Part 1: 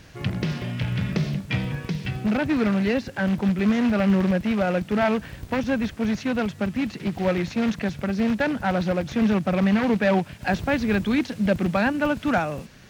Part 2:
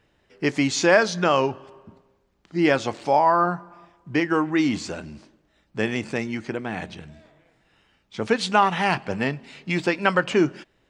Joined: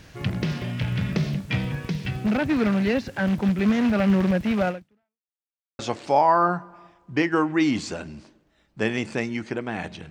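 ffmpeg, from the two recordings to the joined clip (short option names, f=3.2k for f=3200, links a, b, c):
-filter_complex "[0:a]apad=whole_dur=10.1,atrim=end=10.1,asplit=2[a][b];[a]atrim=end=5.31,asetpts=PTS-STARTPTS,afade=t=out:st=4.68:d=0.63:c=exp[c];[b]atrim=start=5.31:end=5.79,asetpts=PTS-STARTPTS,volume=0[d];[1:a]atrim=start=2.77:end=7.08,asetpts=PTS-STARTPTS,afade=t=in:d=0.004:c=hsin[e];[c][d][e]concat=n=3:v=0:a=1"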